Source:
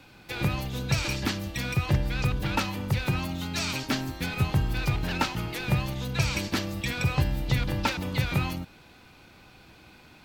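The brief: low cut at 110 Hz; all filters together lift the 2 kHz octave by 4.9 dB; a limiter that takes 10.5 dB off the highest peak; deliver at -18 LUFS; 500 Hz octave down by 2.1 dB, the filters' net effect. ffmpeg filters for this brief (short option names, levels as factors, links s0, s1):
-af "highpass=110,equalizer=f=500:t=o:g=-3,equalizer=f=2000:t=o:g=6.5,volume=3.98,alimiter=limit=0.447:level=0:latency=1"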